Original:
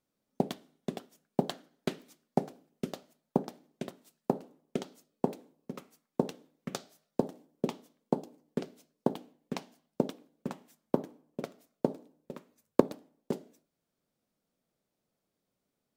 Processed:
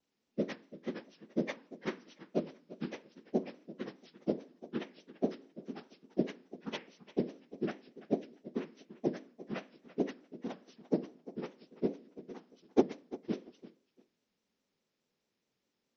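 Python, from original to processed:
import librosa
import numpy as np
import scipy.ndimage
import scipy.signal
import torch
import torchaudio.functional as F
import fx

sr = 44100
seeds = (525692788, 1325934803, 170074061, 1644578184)

y = fx.partial_stretch(x, sr, pct=76)
y = fx.echo_feedback(y, sr, ms=342, feedback_pct=23, wet_db=-17)
y = fx.vibrato_shape(y, sr, shape='square', rate_hz=4.8, depth_cents=100.0)
y = y * 10.0 ** (1.0 / 20.0)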